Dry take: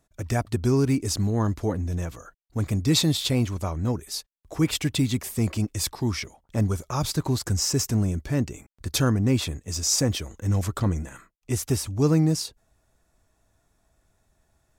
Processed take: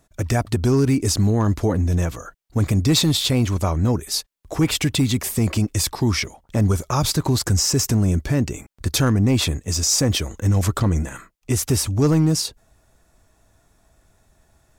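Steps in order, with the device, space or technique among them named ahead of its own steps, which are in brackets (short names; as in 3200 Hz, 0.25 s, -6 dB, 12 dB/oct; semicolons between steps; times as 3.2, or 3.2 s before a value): clipper into limiter (hard clip -15 dBFS, distortion -23 dB; limiter -19.5 dBFS, peak gain reduction 4.5 dB); gain +8.5 dB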